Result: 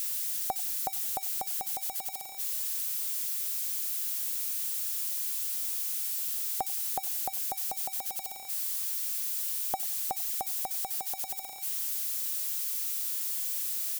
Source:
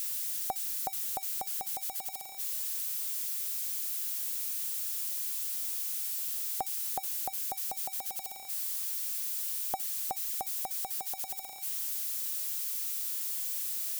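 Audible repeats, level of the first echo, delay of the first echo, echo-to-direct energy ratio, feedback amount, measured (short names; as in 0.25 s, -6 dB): 2, -22.0 dB, 92 ms, -21.5 dB, 30%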